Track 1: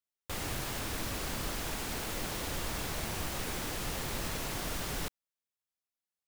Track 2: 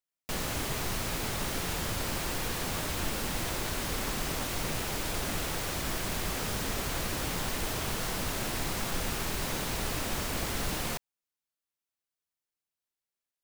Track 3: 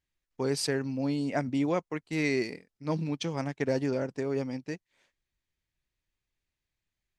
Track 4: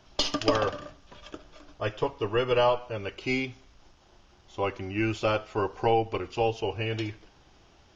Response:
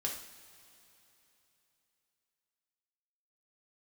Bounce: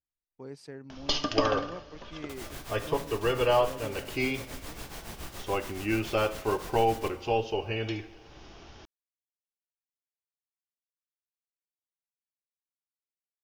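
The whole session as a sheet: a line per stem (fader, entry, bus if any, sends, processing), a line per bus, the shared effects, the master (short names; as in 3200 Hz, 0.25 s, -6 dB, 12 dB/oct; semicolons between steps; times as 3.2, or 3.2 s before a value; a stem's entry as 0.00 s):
-8.0 dB, 2.00 s, send -4 dB, beating tremolo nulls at 7.1 Hz
off
-13.5 dB, 0.00 s, no send, high shelf 2700 Hz -11.5 dB
-4.0 dB, 0.90 s, send -7.5 dB, steep low-pass 6600 Hz; upward compressor, threshold -38 dBFS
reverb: on, pre-delay 3 ms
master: dry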